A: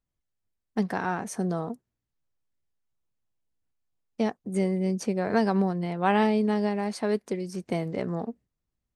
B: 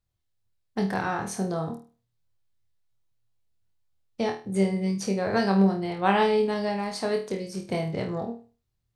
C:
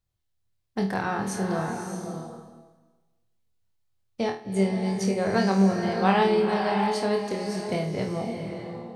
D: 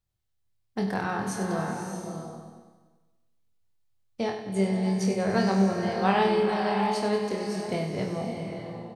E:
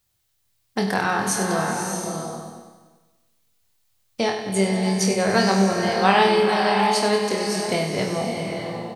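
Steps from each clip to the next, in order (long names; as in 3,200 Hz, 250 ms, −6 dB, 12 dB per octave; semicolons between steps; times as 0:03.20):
graphic EQ with 15 bands 100 Hz +12 dB, 250 Hz −5 dB, 4,000 Hz +5 dB; flutter between parallel walls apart 4.4 metres, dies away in 0.35 s
slow-attack reverb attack 620 ms, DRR 4.5 dB
repeating echo 96 ms, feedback 58%, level −10 dB; level −2 dB
spectral tilt +2 dB per octave; in parallel at −2 dB: downward compressor, threshold −38 dBFS, peak gain reduction 17.5 dB; on the sum: level +6.5 dB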